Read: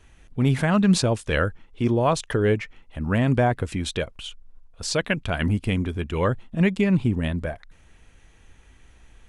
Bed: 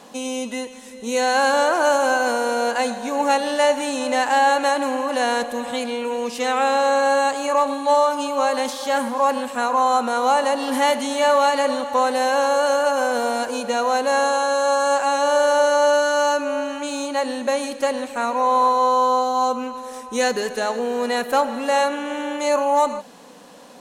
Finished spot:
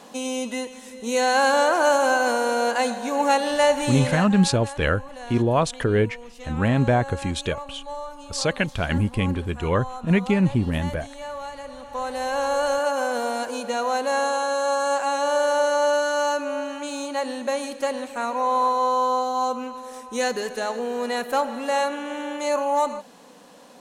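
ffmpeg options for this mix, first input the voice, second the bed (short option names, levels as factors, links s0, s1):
-filter_complex "[0:a]adelay=3500,volume=1.06[s0];[1:a]volume=4.22,afade=t=out:st=3.99:d=0.31:silence=0.149624,afade=t=in:st=11.72:d=0.86:silence=0.211349[s1];[s0][s1]amix=inputs=2:normalize=0"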